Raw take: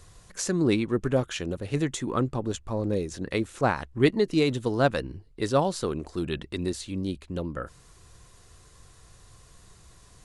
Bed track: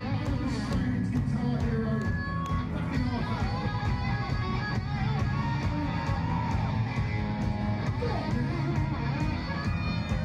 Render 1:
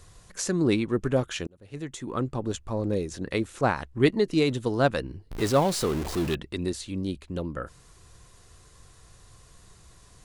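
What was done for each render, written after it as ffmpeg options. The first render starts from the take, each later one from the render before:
-filter_complex "[0:a]asettb=1/sr,asplit=3[a][b][c];[a]atrim=end=5.314[d];[b]atrim=start=5.31:end=6.35,asetpts=PTS-STARTPTS,afade=t=in:d=0.004:c=qsin,afade=t=out:st=1.036:d=0.004:c=qsin,aeval=exprs='val(0)+0.5*0.0355*sgn(val(0))':c=same[e];[c]atrim=start=6.346[f];[d][e]acrossfade=d=0.004:c1=hsin:c2=qsin[g];[g][f]acrossfade=d=0.004:c1=qsin:c2=hsin,asplit=2[h][i];[h]atrim=end=1.47,asetpts=PTS-STARTPTS,afade=t=out:st=1.466:d=0.004:c=hsin[j];[i]atrim=start=1.47,asetpts=PTS-STARTPTS,afade=t=in:d=1.01[k];[j][k]concat=n=2:v=0:a=1"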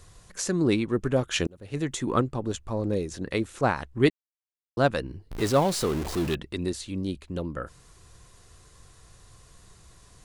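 -filter_complex "[0:a]asplit=3[a][b][c];[a]afade=t=out:st=1.32:d=0.02[d];[b]acontrast=71,afade=t=in:st=1.32:d=0.02,afade=t=out:st=2.2:d=0.02[e];[c]afade=t=in:st=2.2:d=0.02[f];[d][e][f]amix=inputs=3:normalize=0,asplit=3[g][h][i];[g]atrim=end=4.1,asetpts=PTS-STARTPTS,afade=t=out:st=4.096:d=0.004:c=hsin[j];[h]atrim=start=4.1:end=4.77,asetpts=PTS-STARTPTS,volume=0[k];[i]atrim=start=4.77,asetpts=PTS-STARTPTS,afade=t=in:d=0.004:c=hsin[l];[j][k][l]concat=n=3:v=0:a=1"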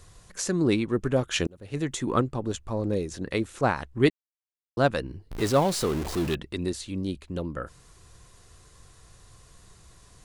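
-af anull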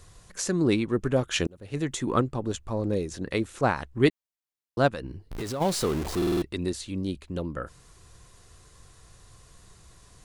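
-filter_complex "[0:a]asplit=3[a][b][c];[a]afade=t=out:st=4.88:d=0.02[d];[b]acompressor=threshold=-30dB:ratio=5:attack=3.2:release=140:knee=1:detection=peak,afade=t=in:st=4.88:d=0.02,afade=t=out:st=5.6:d=0.02[e];[c]afade=t=in:st=5.6:d=0.02[f];[d][e][f]amix=inputs=3:normalize=0,asplit=6[g][h][i][j][k][l];[g]atrim=end=6.222[m];[h]atrim=start=6.168:end=6.222[n];[i]atrim=start=6.168:end=6.222[o];[j]atrim=start=6.168:end=6.222[p];[k]atrim=start=6.168:end=6.222[q];[l]atrim=start=6.418[r];[m][n]acrossfade=d=0.004:c1=hsin:c2=hsin[s];[s][o]acrossfade=d=0.004:c1=hsin:c2=hsin[t];[t][p]acrossfade=d=0.004:c1=hsin:c2=hsin[u];[u][q]acrossfade=d=0.004:c1=hsin:c2=hsin[v];[v][r]acrossfade=d=0.004:c1=hsin:c2=hsin"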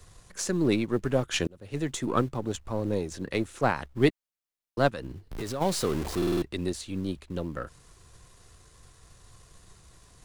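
-filter_complex "[0:a]aeval=exprs='if(lt(val(0),0),0.708*val(0),val(0))':c=same,acrossover=split=160|1800|2500[a][b][c][d];[a]acrusher=bits=5:mode=log:mix=0:aa=0.000001[e];[e][b][c][d]amix=inputs=4:normalize=0"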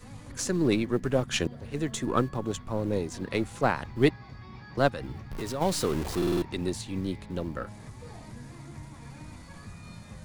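-filter_complex "[1:a]volume=-15.5dB[a];[0:a][a]amix=inputs=2:normalize=0"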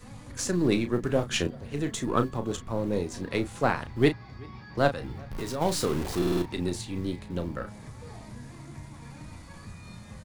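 -filter_complex "[0:a]asplit=2[a][b];[b]adelay=34,volume=-9dB[c];[a][c]amix=inputs=2:normalize=0,asplit=2[d][e];[e]adelay=379,volume=-26dB,highshelf=f=4k:g=-8.53[f];[d][f]amix=inputs=2:normalize=0"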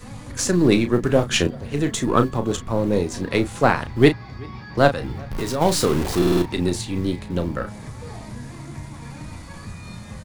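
-af "volume=8dB,alimiter=limit=-1dB:level=0:latency=1"

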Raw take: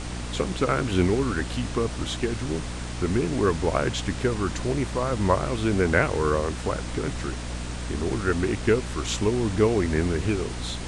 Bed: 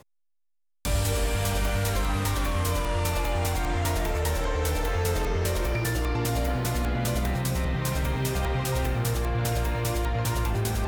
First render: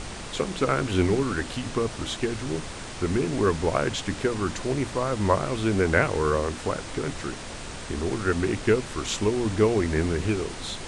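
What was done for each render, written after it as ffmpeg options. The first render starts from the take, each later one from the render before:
-af "bandreject=f=60:t=h:w=6,bandreject=f=120:t=h:w=6,bandreject=f=180:t=h:w=6,bandreject=f=240:t=h:w=6,bandreject=f=300:t=h:w=6"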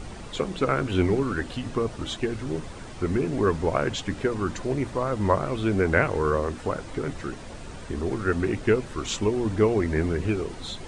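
-af "afftdn=nr=9:nf=-37"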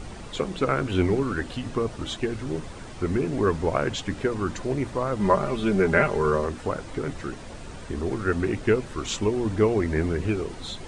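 -filter_complex "[0:a]asettb=1/sr,asplit=3[a][b][c];[a]atrim=end=5.194[d];[b]atrim=start=5.19:end=6.46,asetpts=PTS-STARTPTS,afade=t=in:d=0.004:c=qsin,afade=t=out:st=1.266:d=0.004:c=qsin,aecho=1:1:5:0.65,atrim=end_sample=56007[e];[c]atrim=start=6.456[f];[d][e]acrossfade=d=0.004:c1=hsin:c2=qsin[g];[g][f]acrossfade=d=0.004:c1=qsin:c2=hsin"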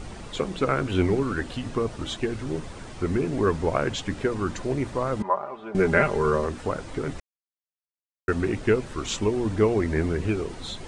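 -filter_complex "[0:a]asettb=1/sr,asplit=3[a][b][c];[a]atrim=end=5.224[d];[b]atrim=start=5.22:end=5.75,asetpts=PTS-STARTPTS,afade=t=in:d=0.004:c=qsin,afade=t=out:st=0.526:d=0.004:c=qsin,bandpass=f=870:t=q:w=2.2[e];[c]atrim=start=5.746[f];[d][e]acrossfade=d=0.004:c1=hsin:c2=qsin[g];[g][f]acrossfade=d=0.004:c1=qsin:c2=hsin,asplit=3[h][i][j];[h]atrim=end=7.2,asetpts=PTS-STARTPTS,afade=t=out:st=7.196:d=0.004:c=hsin[k];[i]atrim=start=7.2:end=8.28,asetpts=PTS-STARTPTS,volume=0[l];[j]atrim=start=8.28,asetpts=PTS-STARTPTS,afade=t=in:d=0.004:c=hsin[m];[k][l][m]concat=n=3:v=0:a=1"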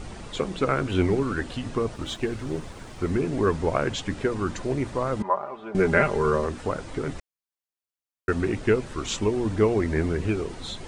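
-filter_complex "[0:a]asettb=1/sr,asplit=3[a][b][c];[a]atrim=end=1.944[d];[b]atrim=start=1.94:end=3.11,asetpts=PTS-STARTPTS,afade=t=in:d=0.004:c=qsin,afade=t=out:st=1.166:d=0.004:c=qsin,aeval=exprs='sgn(val(0))*max(abs(val(0))-0.00224,0)':c=same[e];[c]atrim=start=3.106[f];[d][e]acrossfade=d=0.004:c1=hsin:c2=qsin[g];[g][f]acrossfade=d=0.004:c1=qsin:c2=hsin"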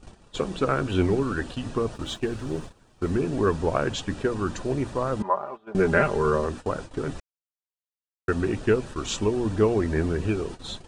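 -af "agate=range=-17dB:threshold=-35dB:ratio=16:detection=peak,bandreject=f=2.1k:w=6.3"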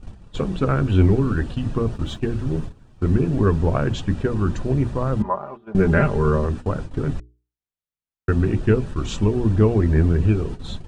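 -af "bass=f=250:g=12,treble=f=4k:g=-5,bandreject=f=60:t=h:w=6,bandreject=f=120:t=h:w=6,bandreject=f=180:t=h:w=6,bandreject=f=240:t=h:w=6,bandreject=f=300:t=h:w=6,bandreject=f=360:t=h:w=6,bandreject=f=420:t=h:w=6"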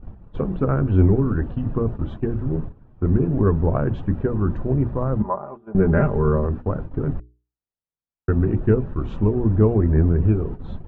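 -af "lowpass=1.2k"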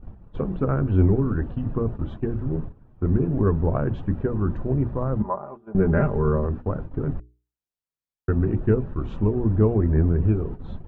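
-af "volume=-2.5dB"

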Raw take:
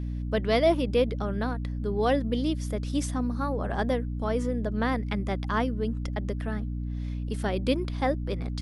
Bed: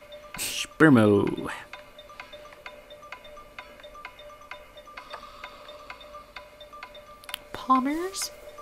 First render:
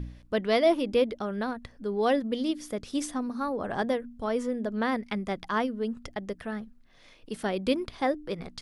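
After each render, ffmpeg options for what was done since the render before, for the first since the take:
-af "bandreject=f=60:t=h:w=4,bandreject=f=120:t=h:w=4,bandreject=f=180:t=h:w=4,bandreject=f=240:t=h:w=4,bandreject=f=300:t=h:w=4"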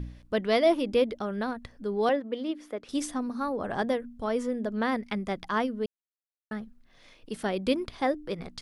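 -filter_complex "[0:a]asettb=1/sr,asplit=3[a][b][c];[a]atrim=end=2.094[d];[b]atrim=start=2.09:end=2.89,asetpts=PTS-STARTPTS,afade=t=in:d=0.004:c=qsin,afade=t=out:st=0.796:d=0.004:c=qsin,acrossover=split=260 3000:gain=0.1 1 0.178[e][f][g];[e][f][g]amix=inputs=3:normalize=0[h];[c]atrim=start=2.886[i];[d][h]acrossfade=d=0.004:c1=hsin:c2=qsin[j];[j][i]acrossfade=d=0.004:c1=qsin:c2=hsin,asplit=3[k][l][m];[k]atrim=end=5.86,asetpts=PTS-STARTPTS,afade=t=out:st=5.856:d=0.004:c=hsin[n];[l]atrim=start=5.86:end=6.51,asetpts=PTS-STARTPTS,volume=0[o];[m]atrim=start=6.51,asetpts=PTS-STARTPTS,afade=t=in:d=0.004:c=hsin[p];[n][o][p]concat=n=3:v=0:a=1"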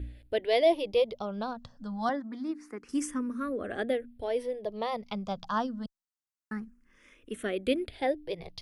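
-filter_complex "[0:a]asplit=2[a][b];[b]afreqshift=0.26[c];[a][c]amix=inputs=2:normalize=1"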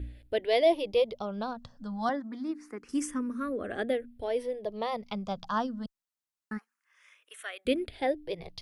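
-filter_complex "[0:a]asplit=3[a][b][c];[a]afade=t=out:st=6.57:d=0.02[d];[b]highpass=f=790:w=0.5412,highpass=f=790:w=1.3066,afade=t=in:st=6.57:d=0.02,afade=t=out:st=7.65:d=0.02[e];[c]afade=t=in:st=7.65:d=0.02[f];[d][e][f]amix=inputs=3:normalize=0"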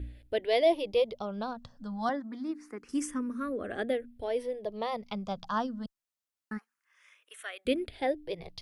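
-af "volume=-1dB"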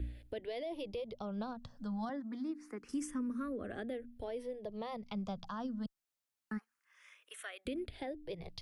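-filter_complex "[0:a]alimiter=level_in=1dB:limit=-24dB:level=0:latency=1:release=54,volume=-1dB,acrossover=split=240[a][b];[b]acompressor=threshold=-47dB:ratio=2[c];[a][c]amix=inputs=2:normalize=0"

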